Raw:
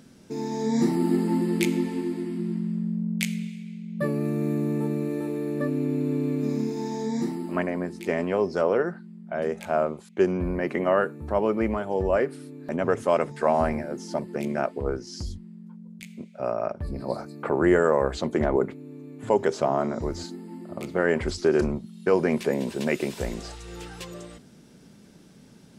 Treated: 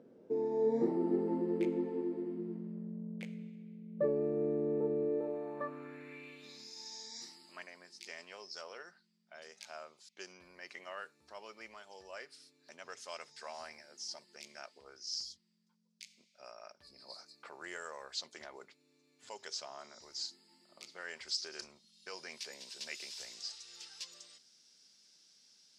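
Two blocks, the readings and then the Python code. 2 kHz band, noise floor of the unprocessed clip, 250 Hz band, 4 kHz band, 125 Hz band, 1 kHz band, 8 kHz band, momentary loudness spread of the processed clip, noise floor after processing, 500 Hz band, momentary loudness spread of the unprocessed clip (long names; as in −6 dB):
−15.0 dB, −51 dBFS, −15.0 dB, −2.0 dB, −20.0 dB, −19.0 dB, −5.5 dB, 20 LU, −73 dBFS, −14.0 dB, 15 LU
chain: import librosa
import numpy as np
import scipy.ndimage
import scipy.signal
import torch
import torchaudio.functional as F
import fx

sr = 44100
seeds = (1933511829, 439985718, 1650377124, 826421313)

y = fx.dynamic_eq(x, sr, hz=280.0, q=0.95, threshold_db=-32.0, ratio=4.0, max_db=-4)
y = fx.filter_sweep_bandpass(y, sr, from_hz=470.0, to_hz=5100.0, start_s=5.15, end_s=6.69, q=3.2)
y = F.gain(torch.from_numpy(y), 3.5).numpy()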